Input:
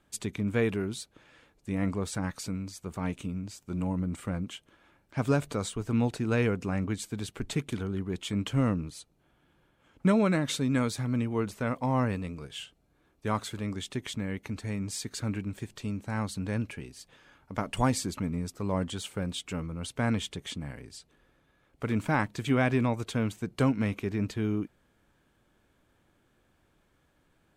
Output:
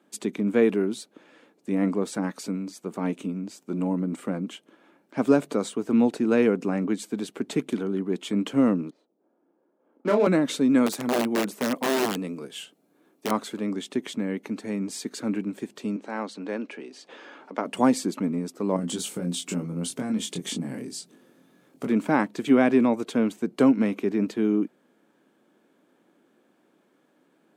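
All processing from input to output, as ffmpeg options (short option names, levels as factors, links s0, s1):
-filter_complex "[0:a]asettb=1/sr,asplit=3[s0][s1][s2];[s0]atrim=end=8.904[s3];[s1]atrim=start=8.9:end=10.27,asetpts=PTS-STARTPTS,afade=t=in:d=0.004:c=qsin,afade=t=out:st=1.366:d=0.004:c=qsin,highpass=400,adynamicsmooth=sensitivity=7:basefreq=650,asplit=2[s4][s5];[s5]adelay=29,volume=0.631[s6];[s4][s6]amix=inputs=2:normalize=0,atrim=end_sample=60417[s7];[s2]atrim=start=10.266[s8];[s3][s7]acrossfade=d=0.004:c1=hsin:c2=qsin[s9];[s9][s8]acrossfade=d=0.004:c1=qsin:c2=hsin,asettb=1/sr,asplit=3[s10][s11][s12];[s10]atrim=end=10.864[s13];[s11]atrim=start=10.86:end=13.31,asetpts=PTS-STARTPTS,afade=t=in:d=0.004:c=qsin,afade=t=out:st=2.446:d=0.004:c=qsin,highshelf=f=8700:g=11,aeval=exprs='(mod(15*val(0)+1,2)-1)/15':c=same[s14];[s12]atrim=start=13.306[s15];[s13][s14]acrossfade=d=0.004:c1=hsin:c2=qsin[s16];[s16][s15]acrossfade=d=0.004:c1=qsin:c2=hsin,asettb=1/sr,asplit=3[s17][s18][s19];[s17]atrim=end=15.964[s20];[s18]atrim=start=15.96:end=17.65,asetpts=PTS-STARTPTS,afade=t=in:d=0.004:c=qsin,afade=t=out:st=1.686:d=0.004:c=qsin,acompressor=mode=upward:threshold=0.0158:ratio=2.5:attack=3.2:release=140:knee=2.83:detection=peak,highpass=340,lowpass=5600[s21];[s19]atrim=start=17.646[s22];[s20][s21]acrossfade=d=0.004:c1=hsin:c2=qsin[s23];[s23][s22]acrossfade=d=0.004:c1=qsin:c2=hsin,asettb=1/sr,asplit=3[s24][s25][s26];[s24]atrim=end=18.764[s27];[s25]atrim=start=18.76:end=21.87,asetpts=PTS-STARTPTS,afade=t=in:d=0.004:c=qsin,afade=t=out:st=3.106:d=0.004:c=qsin,bass=f=250:g=11,treble=f=4000:g=11,acompressor=threshold=0.0398:ratio=6:attack=3.2:release=140:knee=1:detection=peak,asplit=2[s28][s29];[s29]adelay=23,volume=0.631[s30];[s28][s30]amix=inputs=2:normalize=0,atrim=end_sample=137151[s31];[s26]atrim=start=21.866[s32];[s27][s31]acrossfade=d=0.004:c1=hsin:c2=qsin[s33];[s33][s32]acrossfade=d=0.004:c1=qsin:c2=hsin,highpass=f=210:w=0.5412,highpass=f=210:w=1.3066,equalizer=f=270:w=0.39:g=9.5"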